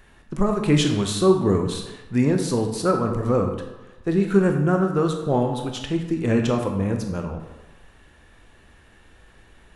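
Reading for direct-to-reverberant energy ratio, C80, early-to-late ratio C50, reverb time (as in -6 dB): 3.5 dB, 8.0 dB, 6.0 dB, 1.1 s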